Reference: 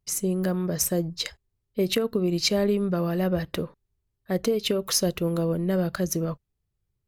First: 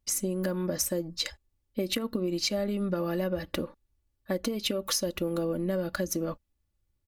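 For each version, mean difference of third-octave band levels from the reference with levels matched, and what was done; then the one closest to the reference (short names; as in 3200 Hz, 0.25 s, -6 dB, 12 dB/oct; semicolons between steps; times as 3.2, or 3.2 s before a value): 2.5 dB: comb 3.5 ms, depth 64%; compressor, threshold -26 dBFS, peak gain reduction 9 dB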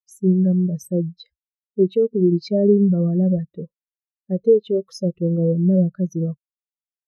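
14.5 dB: in parallel at +2 dB: limiter -20 dBFS, peak gain reduction 9.5 dB; on the sum: spectral expander 2.5:1; gain +2 dB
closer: first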